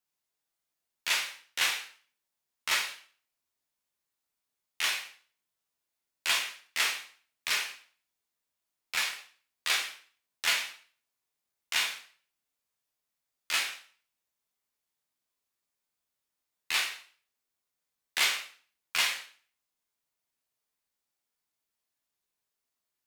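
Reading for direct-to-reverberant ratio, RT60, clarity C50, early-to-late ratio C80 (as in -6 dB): -0.5 dB, 0.45 s, 7.5 dB, 12.0 dB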